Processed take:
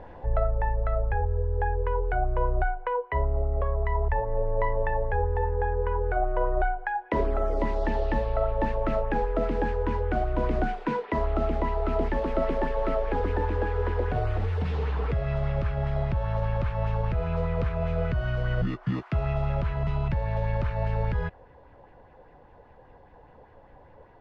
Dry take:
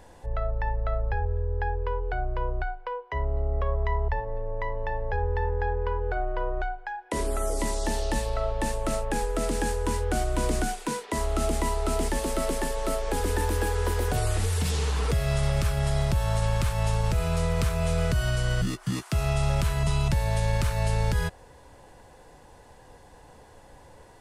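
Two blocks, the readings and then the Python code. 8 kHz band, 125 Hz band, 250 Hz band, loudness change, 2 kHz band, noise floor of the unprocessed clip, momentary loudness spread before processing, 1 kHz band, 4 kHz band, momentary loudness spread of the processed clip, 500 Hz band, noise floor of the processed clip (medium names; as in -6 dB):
under -30 dB, -1.0 dB, 0.0 dB, 0.0 dB, -1.0 dB, -52 dBFS, 6 LU, +1.5 dB, -12.0 dB, 1 LU, +2.0 dB, -53 dBFS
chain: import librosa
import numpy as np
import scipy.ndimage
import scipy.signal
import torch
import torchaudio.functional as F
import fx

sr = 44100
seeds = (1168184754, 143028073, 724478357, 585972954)

y = fx.high_shelf(x, sr, hz=3300.0, db=-12.0)
y = fx.rider(y, sr, range_db=10, speed_s=0.5)
y = fx.air_absorb(y, sr, metres=260.0)
y = fx.bell_lfo(y, sr, hz=5.0, low_hz=500.0, high_hz=2600.0, db=7)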